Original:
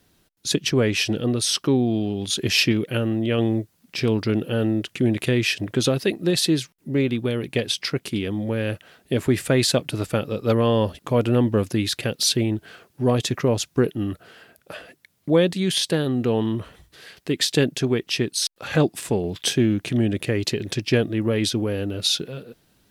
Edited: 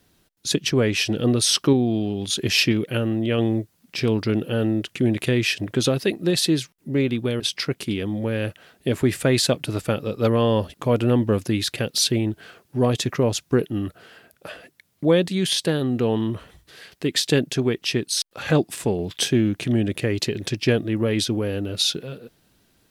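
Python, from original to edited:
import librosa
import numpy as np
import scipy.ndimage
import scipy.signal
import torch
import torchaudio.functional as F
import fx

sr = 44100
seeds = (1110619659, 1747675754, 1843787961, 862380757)

y = fx.edit(x, sr, fx.clip_gain(start_s=1.19, length_s=0.54, db=3.0),
    fx.cut(start_s=7.4, length_s=0.25), tone=tone)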